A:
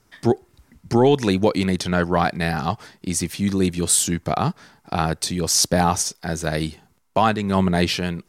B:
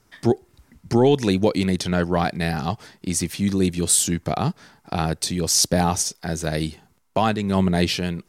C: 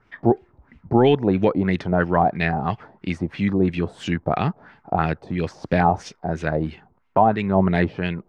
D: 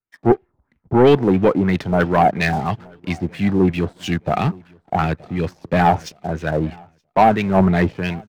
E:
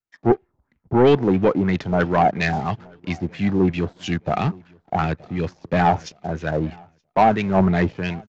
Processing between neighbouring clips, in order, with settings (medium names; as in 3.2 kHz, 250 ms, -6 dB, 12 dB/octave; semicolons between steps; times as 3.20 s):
dynamic bell 1.2 kHz, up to -5 dB, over -35 dBFS, Q 0.96
LFO low-pass sine 3 Hz 690–2700 Hz
waveshaping leveller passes 2; feedback delay 924 ms, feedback 36%, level -21 dB; three bands expanded up and down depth 70%; trim -3 dB
resampled via 16 kHz; trim -2.5 dB